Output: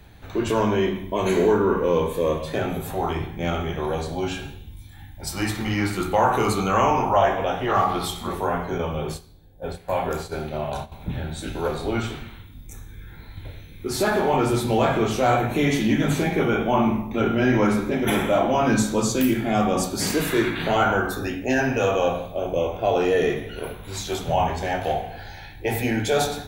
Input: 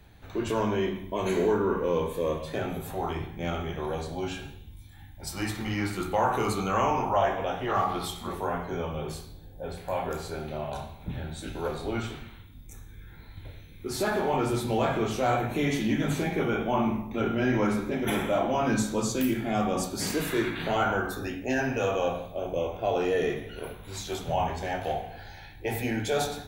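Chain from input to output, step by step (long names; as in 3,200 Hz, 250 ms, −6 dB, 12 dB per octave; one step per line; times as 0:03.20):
0:08.78–0:10.92: noise gate −36 dBFS, range −11 dB
level +6 dB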